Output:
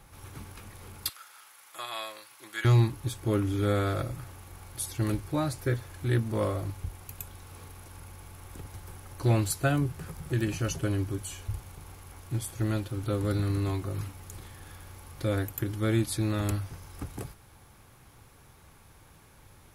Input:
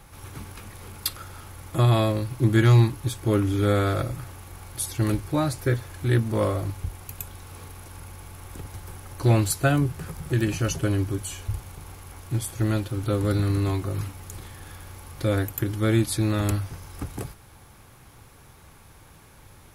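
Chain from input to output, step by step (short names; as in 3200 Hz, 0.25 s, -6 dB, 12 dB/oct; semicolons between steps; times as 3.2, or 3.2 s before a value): 1.09–2.65 HPF 1200 Hz 12 dB/oct; gain -5 dB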